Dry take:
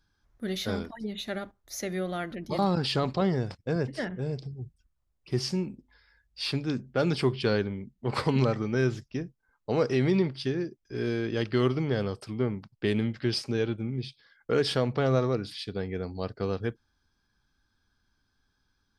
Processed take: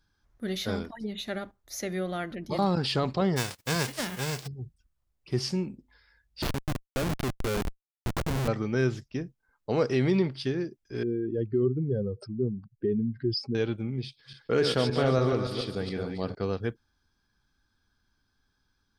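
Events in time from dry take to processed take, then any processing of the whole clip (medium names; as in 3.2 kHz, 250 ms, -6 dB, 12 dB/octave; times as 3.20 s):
3.36–4.46 s: formants flattened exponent 0.3
6.42–8.48 s: Schmitt trigger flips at -25.5 dBFS
11.03–13.55 s: spectral contrast enhancement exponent 2.4
14.05–16.35 s: backward echo that repeats 142 ms, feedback 50%, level -5 dB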